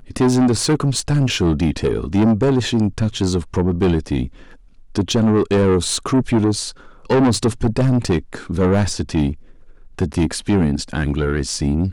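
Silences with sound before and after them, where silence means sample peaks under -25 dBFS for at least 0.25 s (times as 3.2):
4.27–4.95
6.7–7.1
9.33–9.99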